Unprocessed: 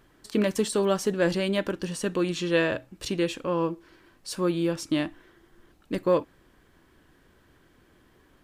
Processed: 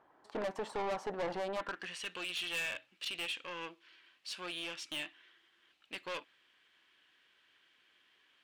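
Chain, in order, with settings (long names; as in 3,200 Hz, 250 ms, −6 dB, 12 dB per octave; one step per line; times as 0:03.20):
harmonic generator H 6 −20 dB, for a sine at −11 dBFS
band-pass filter sweep 830 Hz → 2,900 Hz, 0:01.49–0:02.03
soft clipping −36.5 dBFS, distortion −6 dB
level +4 dB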